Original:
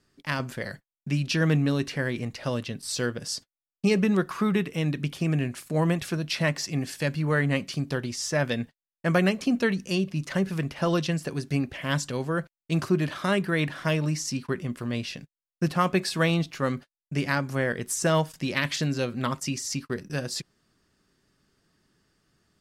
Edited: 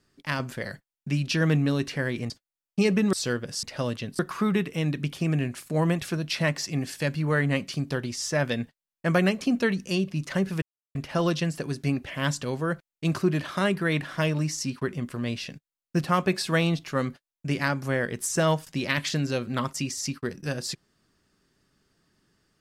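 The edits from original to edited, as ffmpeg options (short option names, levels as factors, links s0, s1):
-filter_complex "[0:a]asplit=6[s0][s1][s2][s3][s4][s5];[s0]atrim=end=2.302[s6];[s1]atrim=start=3.358:end=4.192[s7];[s2]atrim=start=2.858:end=3.362[s8];[s3]atrim=start=2.298:end=2.862[s9];[s4]atrim=start=4.188:end=10.62,asetpts=PTS-STARTPTS,afade=t=out:st=6.428:d=0.004:c=hsin,apad=pad_dur=0.33[s10];[s5]atrim=start=10.62,asetpts=PTS-STARTPTS,afade=t=in:d=0.004:c=hsin[s11];[s6][s7]acrossfade=d=0.004:c1=hsin:c2=hsin[s12];[s12][s8]acrossfade=d=0.004:c1=hsin:c2=hsin[s13];[s13][s9]acrossfade=d=0.004:c1=hsin:c2=hsin[s14];[s10][s11]concat=n=2:v=0:a=1[s15];[s14][s15]acrossfade=d=0.004:c1=hsin:c2=hsin"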